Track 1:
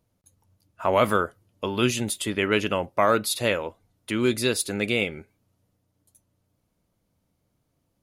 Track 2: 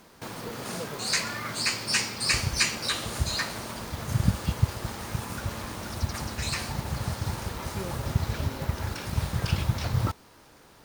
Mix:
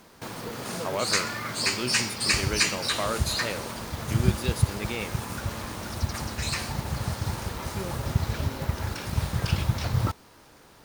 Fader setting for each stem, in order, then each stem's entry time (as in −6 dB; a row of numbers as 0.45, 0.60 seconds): −9.5, +1.0 decibels; 0.00, 0.00 seconds